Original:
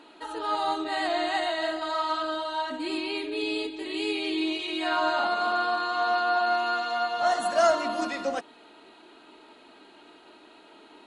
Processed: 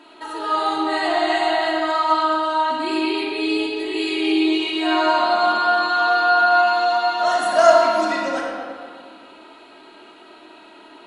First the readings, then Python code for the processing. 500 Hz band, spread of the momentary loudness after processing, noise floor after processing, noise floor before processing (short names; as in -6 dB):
+8.5 dB, 9 LU, -46 dBFS, -53 dBFS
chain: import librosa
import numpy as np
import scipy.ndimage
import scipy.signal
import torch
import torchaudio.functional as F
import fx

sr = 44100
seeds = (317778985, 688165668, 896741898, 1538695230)

y = fx.low_shelf(x, sr, hz=220.0, db=-7.0)
y = fx.echo_banded(y, sr, ms=120, feedback_pct=67, hz=1100.0, wet_db=-7.0)
y = fx.room_shoebox(y, sr, seeds[0], volume_m3=2200.0, walls='mixed', distance_m=2.9)
y = y * 10.0 ** (2.5 / 20.0)